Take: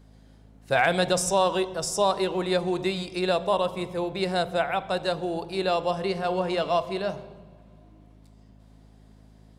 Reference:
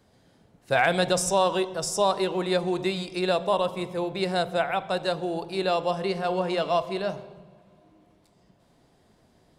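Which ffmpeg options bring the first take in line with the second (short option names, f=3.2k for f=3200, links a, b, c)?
-af "bandreject=f=53:t=h:w=4,bandreject=f=106:t=h:w=4,bandreject=f=159:t=h:w=4,bandreject=f=212:t=h:w=4,bandreject=f=265:t=h:w=4"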